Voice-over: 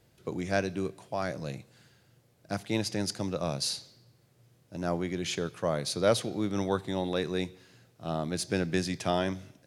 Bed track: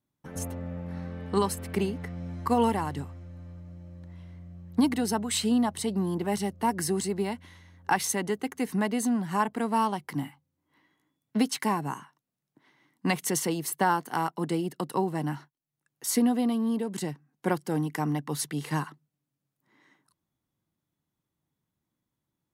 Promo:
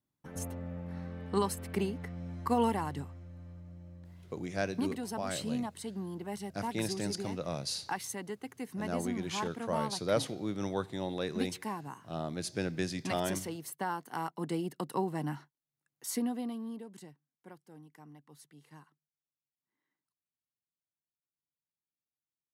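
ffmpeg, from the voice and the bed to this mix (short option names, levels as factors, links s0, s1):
-filter_complex "[0:a]adelay=4050,volume=0.562[s0];[1:a]volume=1.19,afade=t=out:st=3.9:d=0.49:silence=0.473151,afade=t=in:st=13.91:d=0.73:silence=0.501187,afade=t=out:st=15.41:d=1.87:silence=0.1[s1];[s0][s1]amix=inputs=2:normalize=0"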